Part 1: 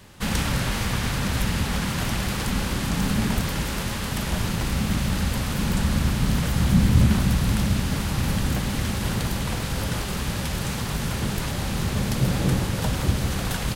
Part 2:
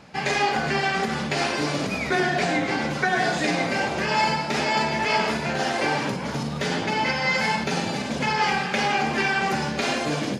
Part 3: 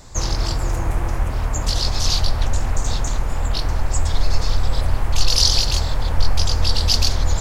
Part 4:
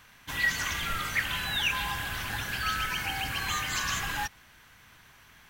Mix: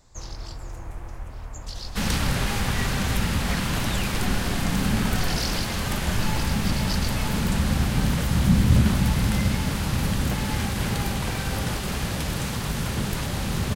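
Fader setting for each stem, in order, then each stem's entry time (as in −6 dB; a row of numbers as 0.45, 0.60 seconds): −0.5, −15.0, −15.0, −9.5 decibels; 1.75, 2.10, 0.00, 2.35 seconds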